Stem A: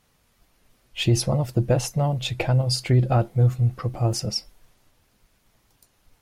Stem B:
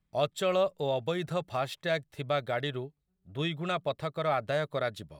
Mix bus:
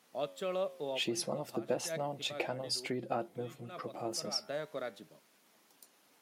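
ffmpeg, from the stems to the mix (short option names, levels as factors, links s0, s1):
-filter_complex "[0:a]acompressor=threshold=0.00562:ratio=1.5,volume=0.944,asplit=2[s0][s1];[1:a]lowshelf=f=330:g=11.5,flanger=delay=9.2:depth=6.5:regen=88:speed=0.39:shape=triangular,volume=0.473[s2];[s1]apad=whole_len=228898[s3];[s2][s3]sidechaincompress=threshold=0.00794:ratio=5:attack=12:release=131[s4];[s0][s4]amix=inputs=2:normalize=0,highpass=f=220:w=0.5412,highpass=f=220:w=1.3066"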